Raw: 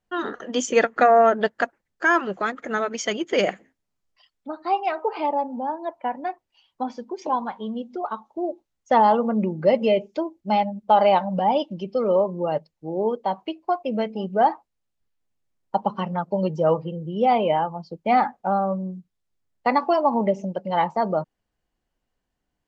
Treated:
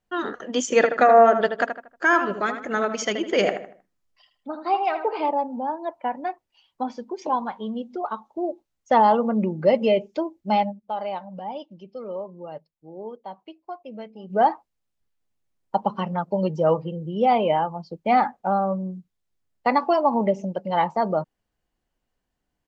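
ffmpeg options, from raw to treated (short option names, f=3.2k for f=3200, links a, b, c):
-filter_complex "[0:a]asplit=3[a][b][c];[a]afade=t=out:st=0.7:d=0.02[d];[b]asplit=2[e][f];[f]adelay=78,lowpass=f=2.6k:p=1,volume=-7.5dB,asplit=2[g][h];[h]adelay=78,lowpass=f=2.6k:p=1,volume=0.37,asplit=2[i][j];[j]adelay=78,lowpass=f=2.6k:p=1,volume=0.37,asplit=2[k][l];[l]adelay=78,lowpass=f=2.6k:p=1,volume=0.37[m];[e][g][i][k][m]amix=inputs=5:normalize=0,afade=t=in:st=0.7:d=0.02,afade=t=out:st=5.29:d=0.02[n];[c]afade=t=in:st=5.29:d=0.02[o];[d][n][o]amix=inputs=3:normalize=0,asplit=3[p][q][r];[p]atrim=end=10.93,asetpts=PTS-STARTPTS,afade=t=out:st=10.71:d=0.22:c=exp:silence=0.237137[s];[q]atrim=start=10.93:end=14.09,asetpts=PTS-STARTPTS,volume=-12.5dB[t];[r]atrim=start=14.09,asetpts=PTS-STARTPTS,afade=t=in:d=0.22:c=exp:silence=0.237137[u];[s][t][u]concat=n=3:v=0:a=1"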